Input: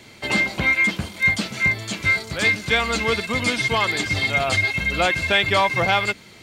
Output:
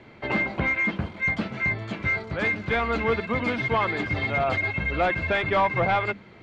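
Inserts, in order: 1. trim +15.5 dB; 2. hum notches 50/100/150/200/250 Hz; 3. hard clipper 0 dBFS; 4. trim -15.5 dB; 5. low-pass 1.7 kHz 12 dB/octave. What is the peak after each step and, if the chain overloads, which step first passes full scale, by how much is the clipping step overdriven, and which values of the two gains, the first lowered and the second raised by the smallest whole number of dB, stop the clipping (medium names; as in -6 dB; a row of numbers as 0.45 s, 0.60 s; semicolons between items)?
+9.5 dBFS, +9.5 dBFS, 0.0 dBFS, -15.5 dBFS, -15.0 dBFS; step 1, 9.5 dB; step 1 +5.5 dB, step 4 -5.5 dB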